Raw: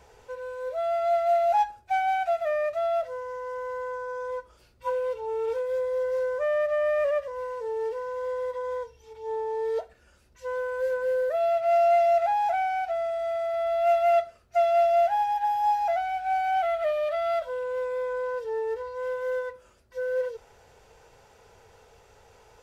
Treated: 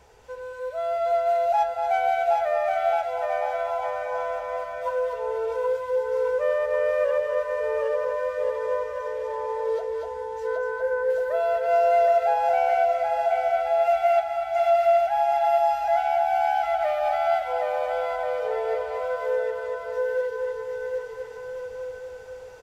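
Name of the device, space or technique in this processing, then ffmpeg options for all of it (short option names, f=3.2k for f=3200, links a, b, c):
ducked delay: -filter_complex "[0:a]asettb=1/sr,asplit=3[a][b][c];[a]atrim=end=10.474[d];[b]atrim=start=10.47:end=11.1,asetpts=PTS-STARTPTS,afade=t=in:d=0.004:c=qsin,afade=t=out:st=0.626:d=0.004:c=qsin,highshelf=f=2.4k:t=q:w=1.5:g=-9[e];[c]atrim=start=11.096[f];[d][e]acrossfade=d=0.004:c1=hsin:c2=qsin[g];[g][f]acrossfade=d=0.004:c1=qsin:c2=hsin,aecho=1:1:770|1386|1879|2273|2588:0.631|0.398|0.251|0.158|0.1,asplit=3[h][i][j];[i]adelay=241,volume=-2dB[k];[j]apad=whole_len=1031709[l];[k][l]sidechaincompress=threshold=-28dB:ratio=8:attack=16:release=614[m];[h][m]amix=inputs=2:normalize=0"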